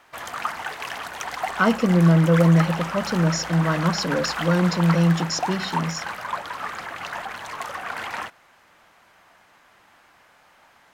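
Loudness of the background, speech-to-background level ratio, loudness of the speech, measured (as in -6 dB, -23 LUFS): -30.0 LUFS, 9.0 dB, -21.0 LUFS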